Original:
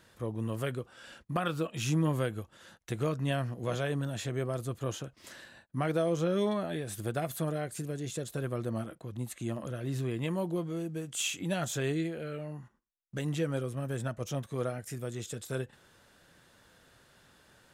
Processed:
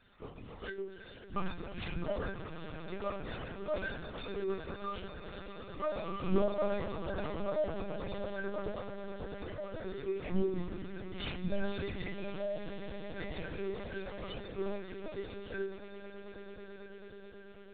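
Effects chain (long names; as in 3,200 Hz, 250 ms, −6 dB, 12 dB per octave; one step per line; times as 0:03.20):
variable-slope delta modulation 32 kbit/s
stiff-string resonator 180 Hz, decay 0.67 s, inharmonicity 0.03
ring modulation 26 Hz
on a send: echo that builds up and dies away 109 ms, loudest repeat 8, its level −16.5 dB
on the sum: linear-prediction vocoder at 8 kHz pitch kept
level +16 dB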